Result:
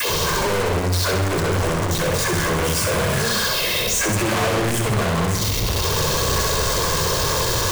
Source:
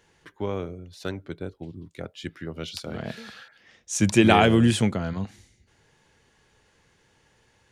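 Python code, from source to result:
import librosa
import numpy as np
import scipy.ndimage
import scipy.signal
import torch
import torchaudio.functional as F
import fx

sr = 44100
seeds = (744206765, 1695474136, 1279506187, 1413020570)

p1 = x + 0.5 * 10.0 ** (-30.5 / 20.0) * np.sign(x)
p2 = fx.peak_eq(p1, sr, hz=1100.0, db=6.5, octaves=0.3)
p3 = fx.hum_notches(p2, sr, base_hz=60, count=2)
p4 = p3 + 0.97 * np.pad(p3, (int(1.9 * sr / 1000.0), 0))[:len(p3)]
p5 = fx.rider(p4, sr, range_db=5, speed_s=2.0)
p6 = p4 + F.gain(torch.from_numpy(p5), 1.5).numpy()
p7 = fx.leveller(p6, sr, passes=3)
p8 = fx.env_phaser(p7, sr, low_hz=560.0, high_hz=3900.0, full_db=-5.5)
p9 = fx.dispersion(p8, sr, late='lows', ms=102.0, hz=350.0)
p10 = np.clip(p9, -10.0 ** (-21.5 / 20.0), 10.0 ** (-21.5 / 20.0))
p11 = p10 + fx.echo_feedback(p10, sr, ms=65, feedback_pct=54, wet_db=-6, dry=0)
y = F.gain(torch.from_numpy(p11), 1.0).numpy()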